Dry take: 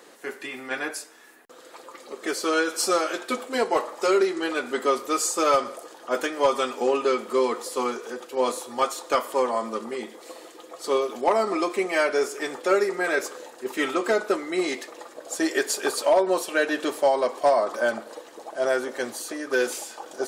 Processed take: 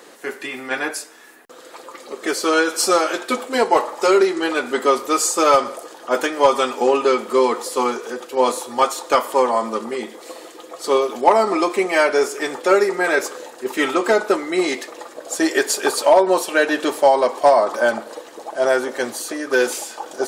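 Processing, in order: dynamic bell 880 Hz, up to +5 dB, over -43 dBFS, Q 5.2; trim +6 dB

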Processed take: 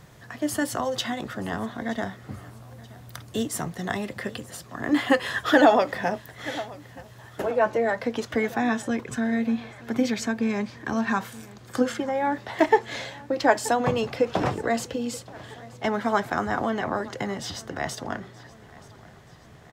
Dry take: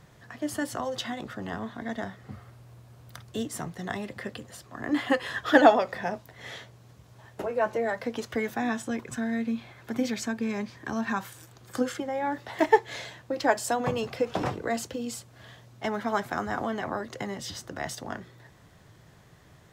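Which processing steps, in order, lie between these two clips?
treble shelf 8.2 kHz +4 dB, from 7.51 s -6 dB; feedback delay 927 ms, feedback 49%, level -21 dB; loudness maximiser +10 dB; trim -5.5 dB

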